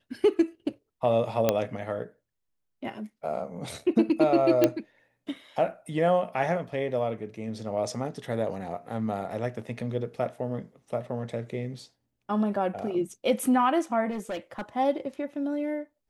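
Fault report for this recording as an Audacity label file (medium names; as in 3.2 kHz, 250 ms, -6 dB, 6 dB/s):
1.490000	1.490000	pop -8 dBFS
4.640000	4.640000	pop -7 dBFS
14.100000	14.620000	clipped -29 dBFS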